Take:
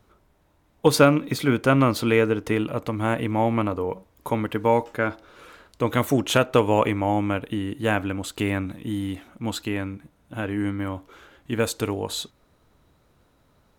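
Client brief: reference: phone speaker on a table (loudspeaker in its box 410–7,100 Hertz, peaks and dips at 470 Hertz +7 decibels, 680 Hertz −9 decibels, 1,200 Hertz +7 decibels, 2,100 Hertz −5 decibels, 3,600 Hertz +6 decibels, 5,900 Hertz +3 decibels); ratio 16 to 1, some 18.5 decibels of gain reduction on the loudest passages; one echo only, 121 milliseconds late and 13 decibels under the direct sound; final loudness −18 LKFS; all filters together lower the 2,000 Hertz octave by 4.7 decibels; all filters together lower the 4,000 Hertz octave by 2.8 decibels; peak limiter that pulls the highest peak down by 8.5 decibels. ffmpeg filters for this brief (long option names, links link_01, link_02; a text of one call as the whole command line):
ffmpeg -i in.wav -af "equalizer=frequency=2000:width_type=o:gain=-6,equalizer=frequency=4000:width_type=o:gain=-5.5,acompressor=threshold=-30dB:ratio=16,alimiter=level_in=2.5dB:limit=-24dB:level=0:latency=1,volume=-2.5dB,highpass=frequency=410:width=0.5412,highpass=frequency=410:width=1.3066,equalizer=frequency=470:width_type=q:width=4:gain=7,equalizer=frequency=680:width_type=q:width=4:gain=-9,equalizer=frequency=1200:width_type=q:width=4:gain=7,equalizer=frequency=2100:width_type=q:width=4:gain=-5,equalizer=frequency=3600:width_type=q:width=4:gain=6,equalizer=frequency=5900:width_type=q:width=4:gain=3,lowpass=frequency=7100:width=0.5412,lowpass=frequency=7100:width=1.3066,aecho=1:1:121:0.224,volume=22.5dB" out.wav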